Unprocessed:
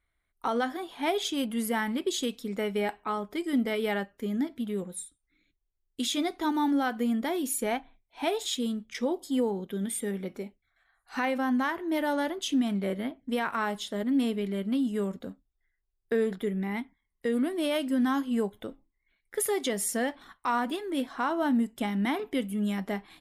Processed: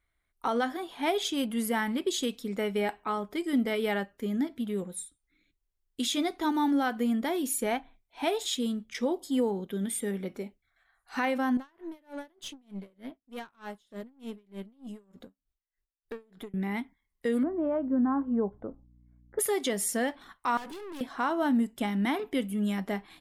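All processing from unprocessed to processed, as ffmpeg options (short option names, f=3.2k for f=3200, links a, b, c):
-filter_complex "[0:a]asettb=1/sr,asplit=3[a][b][c];[a]atrim=end=11.574[d];[b]atrim=start=11.57:end=16.54,asetpts=PTS-STARTPTS,afade=t=in:d=0.004:c=qsin,afade=t=out:st=4.966:d=0.004:c=qsin,acompressor=threshold=-38dB:ratio=1.5:attack=3.2:release=140:knee=1:detection=peak,aeval=exprs='(tanh(35.5*val(0)+0.3)-tanh(0.3))/35.5':c=same,aeval=exprs='val(0)*pow(10,-30*(0.5-0.5*cos(2*PI*3.3*n/s))/20)':c=same[e];[c]atrim=start=16.536[f];[d][e]acrossfade=d=0.004:c1=hsin:c2=qsin[g];[g][f]acrossfade=d=0.004:c1=qsin:c2=hsin,asettb=1/sr,asplit=3[h][i][j];[h]atrim=end=17.434[k];[i]atrim=start=17.43:end=19.39,asetpts=PTS-STARTPTS,afade=t=in:d=0.004:c=qsin,afade=t=out:st=1.956:d=0.004:c=qsin,lowpass=f=1.2k:w=0.5412,lowpass=f=1.2k:w=1.3066,aeval=exprs='val(0)+0.00126*(sin(2*PI*60*n/s)+sin(2*PI*2*60*n/s)/2+sin(2*PI*3*60*n/s)/3+sin(2*PI*4*60*n/s)/4+sin(2*PI*5*60*n/s)/5)':c=same[l];[j]atrim=start=19.386[m];[k][l]acrossfade=d=0.004:c1=hsin:c2=qsin[n];[n][m]acrossfade=d=0.004:c1=qsin:c2=hsin,asettb=1/sr,asplit=3[o][p][q];[o]atrim=end=20.574[r];[p]atrim=start=20.57:end=21.01,asetpts=PTS-STARTPTS,afade=t=in:d=0.004:c=qsin,afade=t=out:st=0.436:d=0.004:c=qsin,aecho=1:1:2.3:0.57,atrim=end_sample=19404,aeval=exprs='(tanh(100*val(0)+0.35)-tanh(0.35))/100':c=same[s];[q]atrim=start=21.006[t];[r][s]acrossfade=d=0.004:c1=hsin:c2=qsin[u];[u][t]acrossfade=d=0.004:c1=qsin:c2=hsin"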